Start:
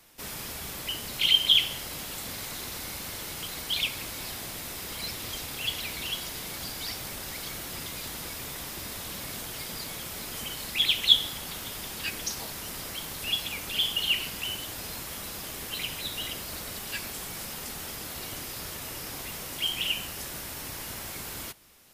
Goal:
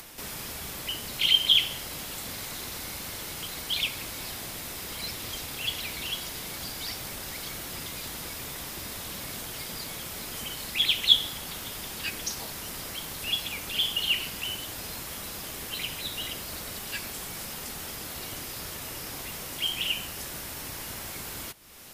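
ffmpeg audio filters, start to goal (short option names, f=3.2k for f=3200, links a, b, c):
-af "acompressor=mode=upward:threshold=-36dB:ratio=2.5"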